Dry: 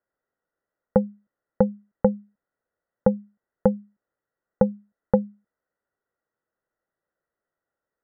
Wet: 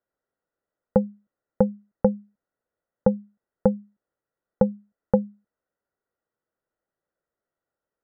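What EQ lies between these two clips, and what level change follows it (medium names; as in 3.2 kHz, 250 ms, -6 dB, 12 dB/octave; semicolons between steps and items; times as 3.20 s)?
low-pass 1.4 kHz 6 dB/octave; 0.0 dB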